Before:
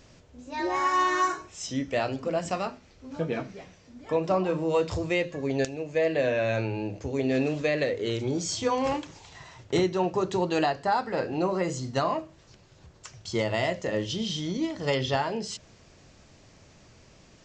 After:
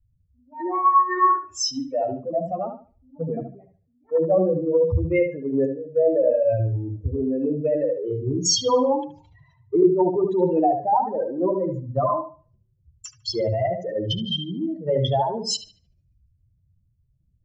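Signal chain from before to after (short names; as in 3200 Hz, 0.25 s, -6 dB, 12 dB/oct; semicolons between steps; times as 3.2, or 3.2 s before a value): spectral contrast raised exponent 3.1; dark delay 74 ms, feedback 34%, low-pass 2800 Hz, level -5.5 dB; three-band expander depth 100%; gain +4.5 dB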